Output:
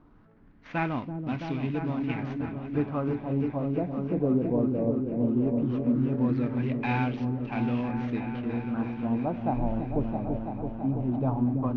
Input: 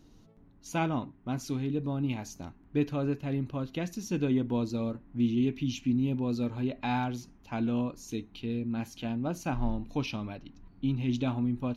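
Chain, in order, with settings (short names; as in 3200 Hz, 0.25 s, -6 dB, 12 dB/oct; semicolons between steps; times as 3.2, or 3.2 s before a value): CVSD 32 kbps; LFO low-pass sine 0.17 Hz 590–2500 Hz; repeats that get brighter 0.332 s, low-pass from 400 Hz, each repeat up 1 oct, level -3 dB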